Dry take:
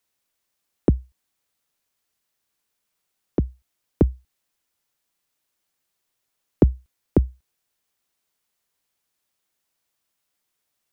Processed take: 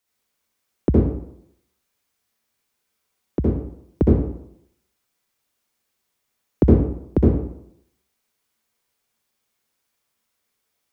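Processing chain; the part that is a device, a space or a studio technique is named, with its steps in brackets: bathroom (reverberation RT60 0.75 s, pre-delay 60 ms, DRR -4.5 dB); trim -2 dB

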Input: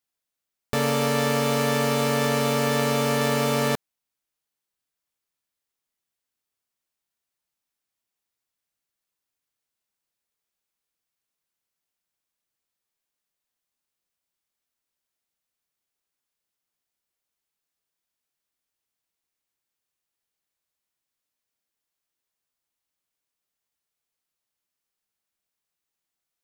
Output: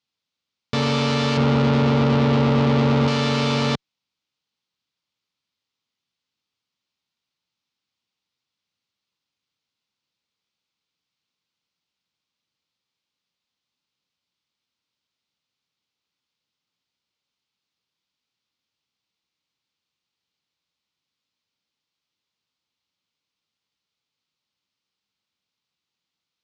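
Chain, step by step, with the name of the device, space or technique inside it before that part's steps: 1.37–3.08 s: tilt shelf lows +9 dB, about 1.5 kHz; guitar amplifier (valve stage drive 23 dB, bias 0.5; tone controls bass +5 dB, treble +14 dB; cabinet simulation 100–4100 Hz, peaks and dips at 390 Hz -4 dB, 670 Hz -7 dB, 1.7 kHz -6 dB); trim +6.5 dB

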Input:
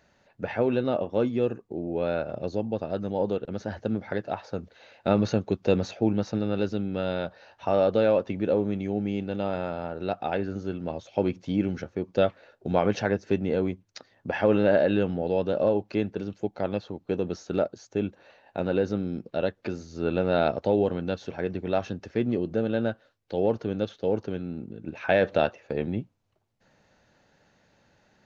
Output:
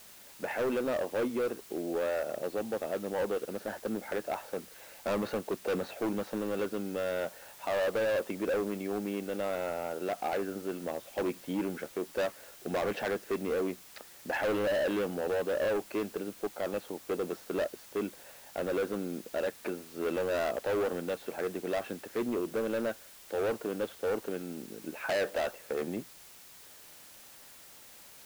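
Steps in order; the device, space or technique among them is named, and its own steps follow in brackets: aircraft radio (band-pass 310–2600 Hz; hard clipper -27 dBFS, distortion -6 dB; white noise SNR 19 dB)

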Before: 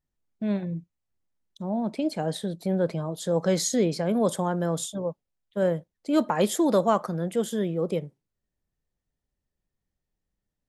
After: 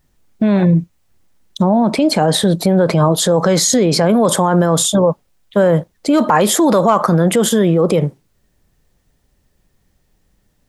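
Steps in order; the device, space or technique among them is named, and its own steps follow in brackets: loud club master (compression 1.5:1, threshold -28 dBFS, peak gain reduction 4.5 dB; hard clipper -16.5 dBFS, distortion -37 dB; loudness maximiser +28 dB); dynamic bell 1.1 kHz, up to +6 dB, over -28 dBFS, Q 1.4; trim -5 dB

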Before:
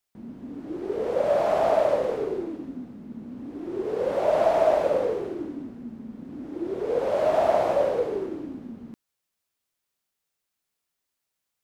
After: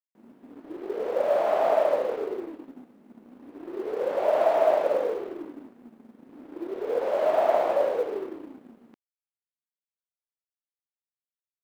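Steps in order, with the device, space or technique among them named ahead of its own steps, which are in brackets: phone line with mismatched companding (band-pass 330–3600 Hz; companding laws mixed up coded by A)

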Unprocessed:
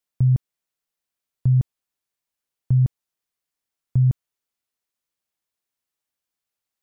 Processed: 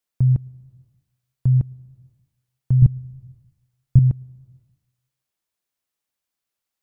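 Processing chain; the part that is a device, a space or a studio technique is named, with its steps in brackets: compressed reverb return (on a send at -10 dB: reverberation RT60 0.90 s, pre-delay 101 ms + compression 5:1, threshold -30 dBFS, peak gain reduction 16.5 dB); 2.82–3.99 s: on the sum: bass shelf 160 Hz +11.5 dB; trim +1 dB

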